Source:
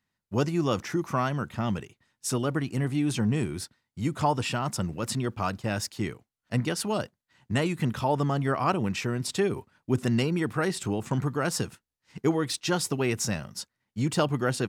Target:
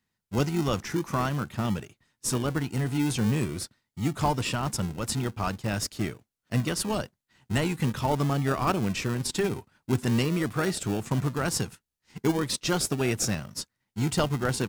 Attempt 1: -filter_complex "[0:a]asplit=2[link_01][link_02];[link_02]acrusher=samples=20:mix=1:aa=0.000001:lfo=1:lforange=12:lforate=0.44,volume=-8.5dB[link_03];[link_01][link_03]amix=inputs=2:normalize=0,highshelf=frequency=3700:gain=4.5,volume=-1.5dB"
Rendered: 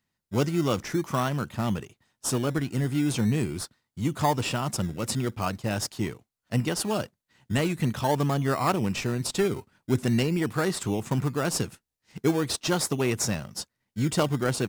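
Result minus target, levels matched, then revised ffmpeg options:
sample-and-hold swept by an LFO: distortion −11 dB
-filter_complex "[0:a]asplit=2[link_01][link_02];[link_02]acrusher=samples=60:mix=1:aa=0.000001:lfo=1:lforange=36:lforate=0.44,volume=-8.5dB[link_03];[link_01][link_03]amix=inputs=2:normalize=0,highshelf=frequency=3700:gain=4.5,volume=-1.5dB"

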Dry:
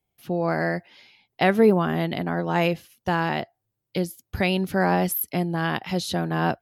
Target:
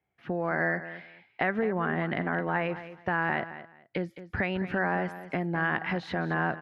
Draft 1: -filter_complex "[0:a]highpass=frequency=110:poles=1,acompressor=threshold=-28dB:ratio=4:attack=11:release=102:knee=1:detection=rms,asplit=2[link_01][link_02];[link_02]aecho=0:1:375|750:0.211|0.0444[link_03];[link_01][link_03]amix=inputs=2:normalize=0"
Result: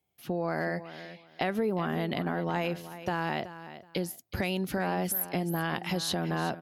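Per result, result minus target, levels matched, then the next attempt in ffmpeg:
echo 161 ms late; 2,000 Hz band −5.5 dB
-filter_complex "[0:a]highpass=frequency=110:poles=1,acompressor=threshold=-28dB:ratio=4:attack=11:release=102:knee=1:detection=rms,asplit=2[link_01][link_02];[link_02]aecho=0:1:214|428:0.211|0.0444[link_03];[link_01][link_03]amix=inputs=2:normalize=0"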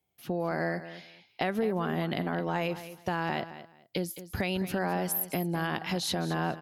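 2,000 Hz band −5.5 dB
-filter_complex "[0:a]highpass=frequency=110:poles=1,acompressor=threshold=-28dB:ratio=4:attack=11:release=102:knee=1:detection=rms,lowpass=frequency=1800:width_type=q:width=2.5,asplit=2[link_01][link_02];[link_02]aecho=0:1:214|428:0.211|0.0444[link_03];[link_01][link_03]amix=inputs=2:normalize=0"

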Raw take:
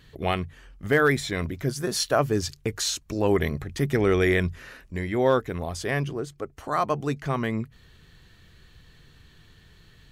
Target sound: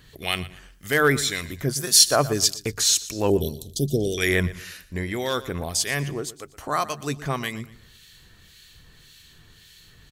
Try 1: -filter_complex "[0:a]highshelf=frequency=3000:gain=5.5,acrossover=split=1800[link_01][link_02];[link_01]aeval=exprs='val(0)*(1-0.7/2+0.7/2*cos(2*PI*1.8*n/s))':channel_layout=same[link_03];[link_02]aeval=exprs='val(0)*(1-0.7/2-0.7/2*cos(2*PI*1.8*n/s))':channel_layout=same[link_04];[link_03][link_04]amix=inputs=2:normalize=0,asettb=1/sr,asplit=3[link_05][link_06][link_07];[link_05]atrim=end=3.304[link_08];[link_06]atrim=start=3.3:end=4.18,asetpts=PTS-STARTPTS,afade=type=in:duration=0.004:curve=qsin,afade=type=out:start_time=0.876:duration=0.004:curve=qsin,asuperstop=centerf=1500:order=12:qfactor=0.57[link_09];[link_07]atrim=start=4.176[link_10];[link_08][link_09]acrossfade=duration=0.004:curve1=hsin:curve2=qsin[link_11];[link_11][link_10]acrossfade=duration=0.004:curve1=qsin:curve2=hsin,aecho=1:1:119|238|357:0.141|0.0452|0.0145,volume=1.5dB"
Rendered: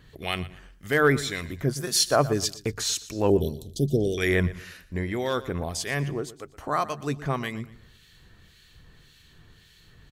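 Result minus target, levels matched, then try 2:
8,000 Hz band −5.0 dB
-filter_complex "[0:a]highshelf=frequency=3000:gain=16,acrossover=split=1800[link_01][link_02];[link_01]aeval=exprs='val(0)*(1-0.7/2+0.7/2*cos(2*PI*1.8*n/s))':channel_layout=same[link_03];[link_02]aeval=exprs='val(0)*(1-0.7/2-0.7/2*cos(2*PI*1.8*n/s))':channel_layout=same[link_04];[link_03][link_04]amix=inputs=2:normalize=0,asettb=1/sr,asplit=3[link_05][link_06][link_07];[link_05]atrim=end=3.304[link_08];[link_06]atrim=start=3.3:end=4.18,asetpts=PTS-STARTPTS,afade=type=in:duration=0.004:curve=qsin,afade=type=out:start_time=0.876:duration=0.004:curve=qsin,asuperstop=centerf=1500:order=12:qfactor=0.57[link_09];[link_07]atrim=start=4.176[link_10];[link_08][link_09]acrossfade=duration=0.004:curve1=hsin:curve2=qsin[link_11];[link_11][link_10]acrossfade=duration=0.004:curve1=qsin:curve2=hsin,aecho=1:1:119|238|357:0.141|0.0452|0.0145,volume=1.5dB"

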